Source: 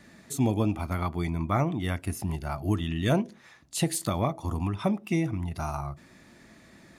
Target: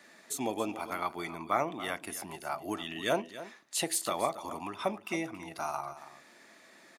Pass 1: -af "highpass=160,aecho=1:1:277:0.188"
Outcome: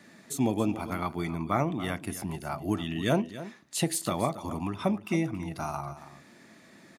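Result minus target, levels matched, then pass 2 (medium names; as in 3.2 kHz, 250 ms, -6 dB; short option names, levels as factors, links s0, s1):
125 Hz band +12.0 dB
-af "highpass=460,aecho=1:1:277:0.188"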